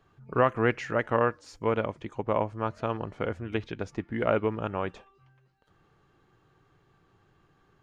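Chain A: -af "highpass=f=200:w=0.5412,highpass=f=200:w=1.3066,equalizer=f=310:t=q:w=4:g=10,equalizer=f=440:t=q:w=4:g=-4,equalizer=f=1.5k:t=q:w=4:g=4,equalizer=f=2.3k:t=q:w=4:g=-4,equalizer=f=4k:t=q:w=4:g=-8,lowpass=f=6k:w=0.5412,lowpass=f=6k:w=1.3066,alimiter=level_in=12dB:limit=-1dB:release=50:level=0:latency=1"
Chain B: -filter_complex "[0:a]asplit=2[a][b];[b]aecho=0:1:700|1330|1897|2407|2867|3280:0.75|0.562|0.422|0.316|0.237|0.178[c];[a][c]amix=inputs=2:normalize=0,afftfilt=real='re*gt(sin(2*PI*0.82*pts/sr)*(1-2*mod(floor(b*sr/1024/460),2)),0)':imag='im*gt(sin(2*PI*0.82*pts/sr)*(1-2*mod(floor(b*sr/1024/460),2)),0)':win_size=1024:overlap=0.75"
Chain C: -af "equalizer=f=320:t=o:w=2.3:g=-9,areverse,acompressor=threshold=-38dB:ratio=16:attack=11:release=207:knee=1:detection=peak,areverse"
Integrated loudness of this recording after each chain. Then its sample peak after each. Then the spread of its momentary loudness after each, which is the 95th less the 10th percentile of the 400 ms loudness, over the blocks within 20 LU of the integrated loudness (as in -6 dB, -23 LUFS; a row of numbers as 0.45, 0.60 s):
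-18.0, -31.0, -44.0 LUFS; -1.0, -13.0, -24.5 dBFS; 7, 13, 5 LU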